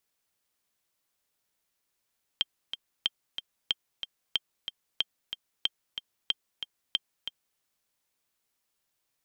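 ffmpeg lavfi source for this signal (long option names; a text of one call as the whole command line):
ffmpeg -f lavfi -i "aevalsrc='pow(10,(-12-9*gte(mod(t,2*60/185),60/185))/20)*sin(2*PI*3170*mod(t,60/185))*exp(-6.91*mod(t,60/185)/0.03)':duration=5.18:sample_rate=44100" out.wav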